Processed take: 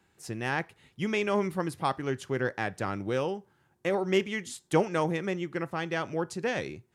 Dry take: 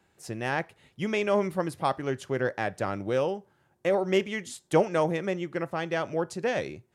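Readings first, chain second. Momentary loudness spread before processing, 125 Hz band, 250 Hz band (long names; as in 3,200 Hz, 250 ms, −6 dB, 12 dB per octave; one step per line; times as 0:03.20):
8 LU, 0.0 dB, −0.5 dB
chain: parametric band 600 Hz −6.5 dB 0.56 octaves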